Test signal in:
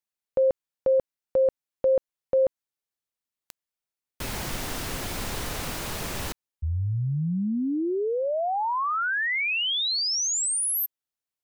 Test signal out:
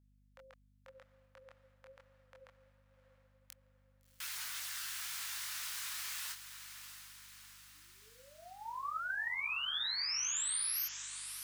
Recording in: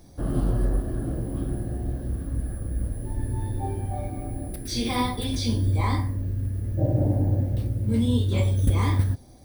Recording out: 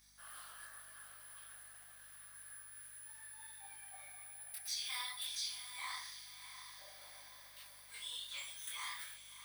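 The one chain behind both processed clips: HPF 1400 Hz 24 dB/oct; dynamic EQ 2300 Hz, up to -5 dB, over -42 dBFS, Q 1; compressor 2.5:1, threshold -34 dBFS; chorus voices 4, 0.82 Hz, delay 24 ms, depth 4.4 ms; hum 50 Hz, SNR 26 dB; diffused feedback echo 0.689 s, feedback 55%, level -10 dB; gain -1 dB

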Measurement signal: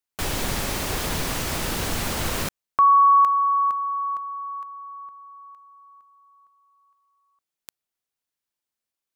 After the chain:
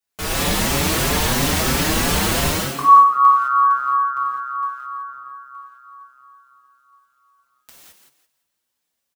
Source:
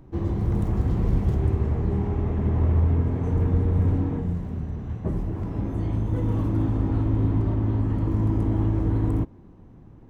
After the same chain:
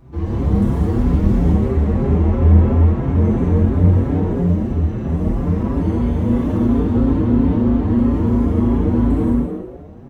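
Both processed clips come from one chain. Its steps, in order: in parallel at +2.5 dB: limiter -22.5 dBFS; on the sum: frequency-shifting echo 0.17 s, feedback 30%, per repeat +130 Hz, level -7 dB; non-linear reverb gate 0.24 s flat, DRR -7.5 dB; endless flanger 5.7 ms +3 Hz; gain -3 dB

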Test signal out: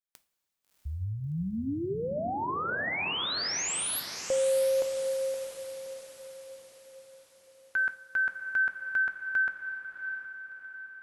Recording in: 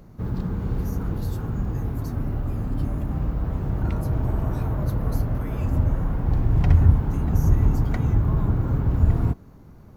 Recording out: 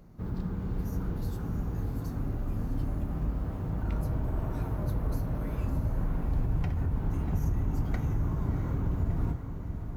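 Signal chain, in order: limiter -15 dBFS; diffused feedback echo 0.671 s, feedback 50%, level -8 dB; two-slope reverb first 0.32 s, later 4.2 s, from -18 dB, DRR 9.5 dB; gain -7 dB

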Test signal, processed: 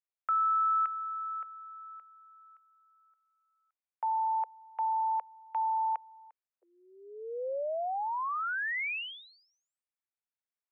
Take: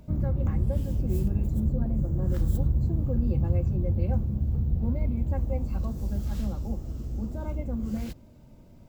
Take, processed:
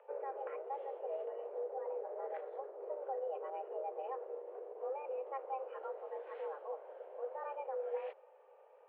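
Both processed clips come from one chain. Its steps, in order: limiter -20 dBFS; mistuned SSB +270 Hz 220–2400 Hz; gain -4 dB

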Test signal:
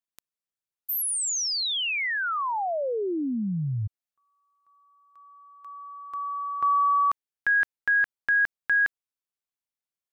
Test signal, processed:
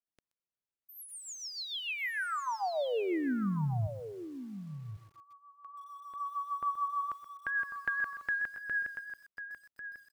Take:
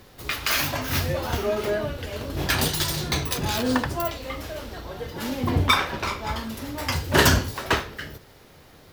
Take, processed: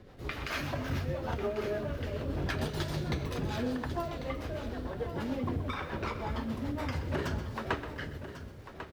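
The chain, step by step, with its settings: LPF 1300 Hz 6 dB/oct; compressor 12:1, threshold -28 dBFS; rotary speaker horn 6.7 Hz; echo 1.095 s -11 dB; lo-fi delay 0.127 s, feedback 35%, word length 9-bit, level -12.5 dB

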